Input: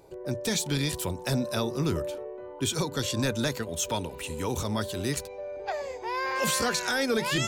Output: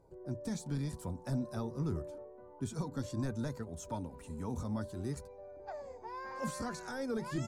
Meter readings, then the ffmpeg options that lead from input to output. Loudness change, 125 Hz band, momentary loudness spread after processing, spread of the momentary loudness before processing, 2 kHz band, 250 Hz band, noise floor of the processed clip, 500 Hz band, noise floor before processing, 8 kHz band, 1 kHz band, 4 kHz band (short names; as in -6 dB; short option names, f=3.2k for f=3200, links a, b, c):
-10.5 dB, -6.0 dB, 9 LU, 8 LU, -17.5 dB, -7.0 dB, -54 dBFS, -11.5 dB, -42 dBFS, -18.0 dB, -11.5 dB, -22.5 dB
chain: -af "firequalizer=gain_entry='entry(220,0);entry(420,-10);entry(670,-6);entry(1200,-8);entry(2900,-24);entry(4700,-15);entry(9700,-13);entry(14000,-22)':delay=0.05:min_phase=1,flanger=delay=1.9:depth=2.9:regen=57:speed=0.57:shape=triangular"